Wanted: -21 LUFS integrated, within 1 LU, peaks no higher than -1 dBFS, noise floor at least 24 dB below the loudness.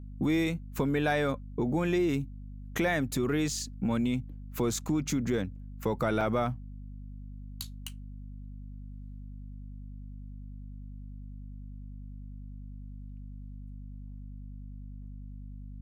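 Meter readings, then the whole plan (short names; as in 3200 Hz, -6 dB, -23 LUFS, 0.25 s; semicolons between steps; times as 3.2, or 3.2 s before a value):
dropouts 1; longest dropout 2.3 ms; hum 50 Hz; harmonics up to 250 Hz; hum level -40 dBFS; loudness -31.0 LUFS; peak -17.0 dBFS; loudness target -21.0 LUFS
-> interpolate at 6.21, 2.3 ms; de-hum 50 Hz, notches 5; gain +10 dB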